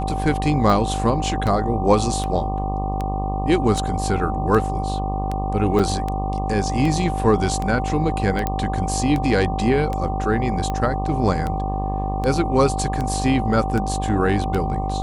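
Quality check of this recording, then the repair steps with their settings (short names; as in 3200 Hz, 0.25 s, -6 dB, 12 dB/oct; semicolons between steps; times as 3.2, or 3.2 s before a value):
buzz 50 Hz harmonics 24 -25 dBFS
tick 78 rpm
tone 770 Hz -26 dBFS
5.79–5.8 gap 5.8 ms
8.47 pop -9 dBFS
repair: de-click; notch 770 Hz, Q 30; de-hum 50 Hz, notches 24; interpolate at 5.79, 5.8 ms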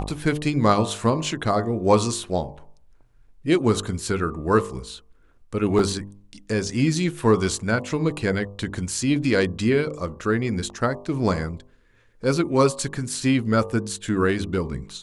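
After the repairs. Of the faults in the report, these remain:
none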